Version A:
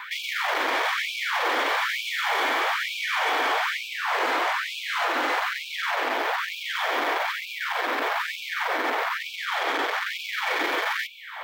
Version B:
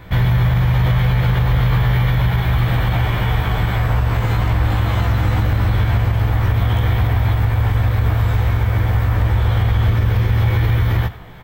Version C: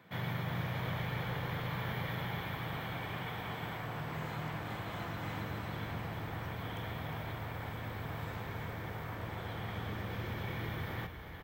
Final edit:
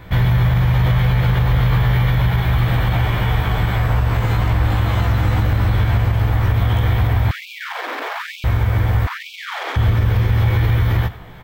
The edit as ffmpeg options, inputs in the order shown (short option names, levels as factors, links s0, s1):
-filter_complex "[0:a]asplit=2[s0][s1];[1:a]asplit=3[s2][s3][s4];[s2]atrim=end=7.312[s5];[s0]atrim=start=7.308:end=8.442[s6];[s3]atrim=start=8.438:end=9.072[s7];[s1]atrim=start=9.068:end=9.762[s8];[s4]atrim=start=9.758[s9];[s5][s6]acrossfade=d=0.004:c1=hsin:c2=hsin[s10];[s10][s7]acrossfade=d=0.004:c1=hsin:c2=hsin[s11];[s11][s8]acrossfade=d=0.004:c1=hsin:c2=hsin[s12];[s12][s9]acrossfade=d=0.004:c1=hsin:c2=hsin"